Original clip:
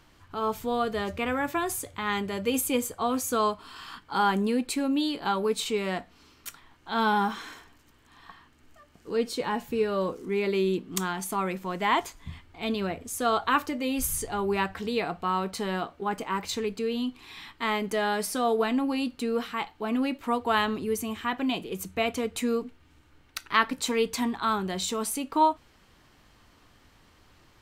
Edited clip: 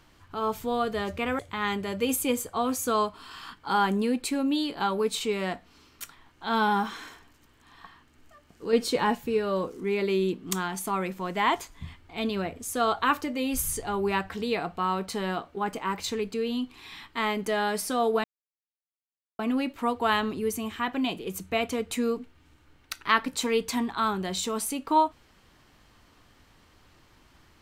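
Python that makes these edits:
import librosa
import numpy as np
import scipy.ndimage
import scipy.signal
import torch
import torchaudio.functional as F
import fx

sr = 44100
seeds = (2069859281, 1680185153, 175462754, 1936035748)

y = fx.edit(x, sr, fx.cut(start_s=1.39, length_s=0.45),
    fx.clip_gain(start_s=9.18, length_s=0.42, db=4.5),
    fx.silence(start_s=18.69, length_s=1.15), tone=tone)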